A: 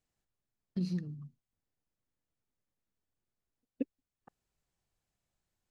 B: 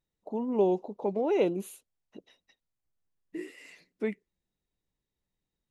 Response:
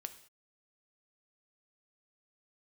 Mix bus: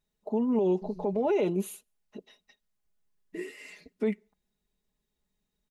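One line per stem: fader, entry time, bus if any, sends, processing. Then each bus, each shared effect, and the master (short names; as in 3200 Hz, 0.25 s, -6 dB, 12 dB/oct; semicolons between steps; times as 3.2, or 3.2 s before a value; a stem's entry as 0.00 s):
-4.0 dB, 0.05 s, no send, bell 2200 Hz -12 dB 2 oct; AM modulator 190 Hz, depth 90%; auto duck -12 dB, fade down 1.95 s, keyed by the second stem
+2.0 dB, 0.00 s, send -21.5 dB, dry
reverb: on, pre-delay 3 ms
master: comb 4.8 ms, depth 67%; limiter -19 dBFS, peak gain reduction 11.5 dB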